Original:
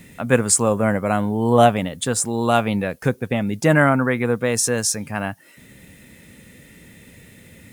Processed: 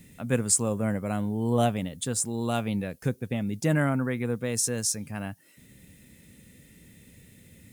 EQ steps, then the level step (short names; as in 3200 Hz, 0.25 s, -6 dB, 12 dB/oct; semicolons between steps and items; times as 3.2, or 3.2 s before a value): bell 1100 Hz -9 dB 2.9 oct; -5.0 dB